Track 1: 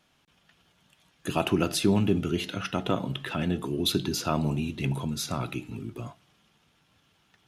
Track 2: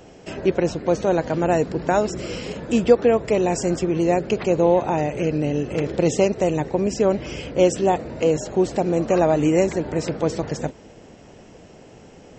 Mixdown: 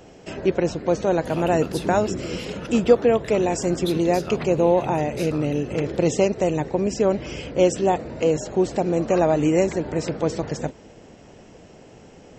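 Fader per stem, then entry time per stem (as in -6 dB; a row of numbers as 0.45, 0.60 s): -7.0, -1.0 dB; 0.00, 0.00 s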